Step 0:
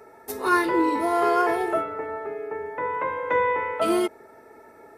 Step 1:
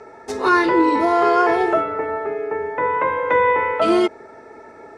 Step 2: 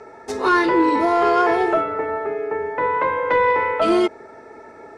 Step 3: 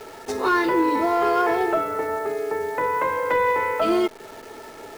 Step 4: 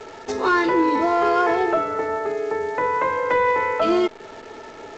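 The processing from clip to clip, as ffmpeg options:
-filter_complex "[0:a]lowpass=f=7k:w=0.5412,lowpass=f=7k:w=1.3066,asplit=2[a][b];[b]alimiter=limit=-16.5dB:level=0:latency=1:release=145,volume=3dB[c];[a][c]amix=inputs=2:normalize=0"
-af "asoftclip=type=tanh:threshold=-6.5dB"
-filter_complex "[0:a]asplit=2[a][b];[b]acompressor=threshold=-27dB:ratio=6,volume=0.5dB[c];[a][c]amix=inputs=2:normalize=0,acrusher=bits=7:dc=4:mix=0:aa=0.000001,volume=-5.5dB"
-af "volume=1.5dB" -ar 16000 -c:a g722

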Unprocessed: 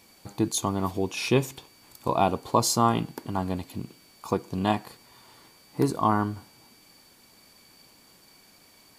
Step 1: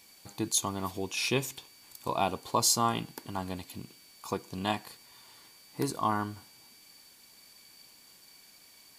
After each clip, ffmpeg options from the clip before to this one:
-af "tiltshelf=f=1.4k:g=-5,bandreject=f=1.3k:w=20,volume=-3.5dB"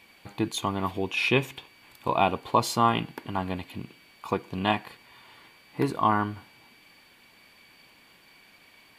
-af "highshelf=f=4k:t=q:w=1.5:g=-13,volume=5.5dB"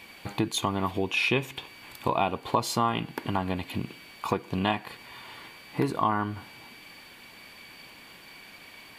-af "acompressor=threshold=-34dB:ratio=2.5,volume=7.5dB"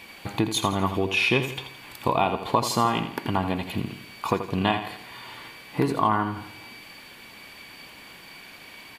-af "aecho=1:1:83|166|249|332|415:0.316|0.136|0.0585|0.0251|0.0108,volume=3dB"

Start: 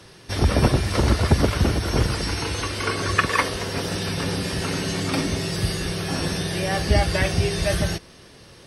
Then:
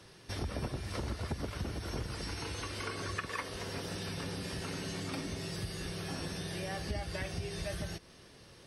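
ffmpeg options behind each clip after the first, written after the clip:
-af "acompressor=threshold=-28dB:ratio=3,volume=-9dB"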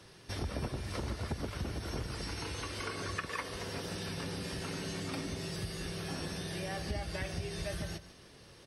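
-af "aecho=1:1:146:0.188"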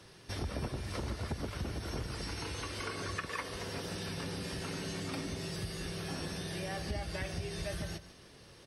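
-af "asoftclip=type=tanh:threshold=-22.5dB"

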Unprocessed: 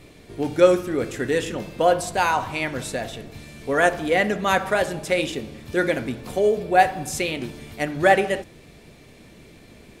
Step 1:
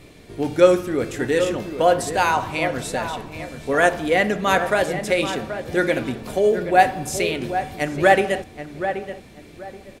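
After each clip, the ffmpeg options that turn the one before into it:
-filter_complex "[0:a]asplit=2[a][b];[b]adelay=779,lowpass=f=1.8k:p=1,volume=-9dB,asplit=2[c][d];[d]adelay=779,lowpass=f=1.8k:p=1,volume=0.26,asplit=2[e][f];[f]adelay=779,lowpass=f=1.8k:p=1,volume=0.26[g];[a][c][e][g]amix=inputs=4:normalize=0,volume=1.5dB"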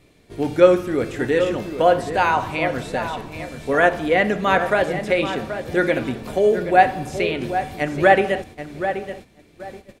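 -filter_complex "[0:a]acrossover=split=3700[a][b];[b]acompressor=threshold=-45dB:ratio=4:attack=1:release=60[c];[a][c]amix=inputs=2:normalize=0,agate=range=-10dB:threshold=-39dB:ratio=16:detection=peak,volume=1dB"

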